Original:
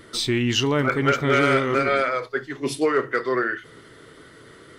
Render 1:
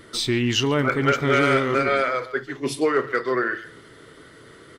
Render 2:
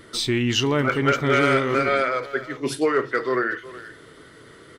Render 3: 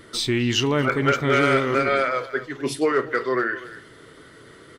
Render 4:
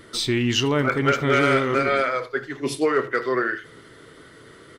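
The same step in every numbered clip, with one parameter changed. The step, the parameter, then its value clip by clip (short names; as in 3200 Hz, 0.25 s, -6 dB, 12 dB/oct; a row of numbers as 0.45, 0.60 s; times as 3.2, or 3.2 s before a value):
speakerphone echo, time: 140, 370, 250, 80 ms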